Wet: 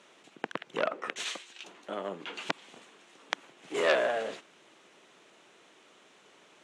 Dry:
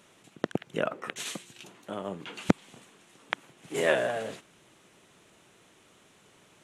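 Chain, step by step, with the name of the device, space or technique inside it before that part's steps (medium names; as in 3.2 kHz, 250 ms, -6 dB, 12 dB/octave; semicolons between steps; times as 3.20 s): 1.25–1.66 s: frequency weighting A; public-address speaker with an overloaded transformer (transformer saturation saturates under 3.9 kHz; band-pass 300–6200 Hz); trim +2 dB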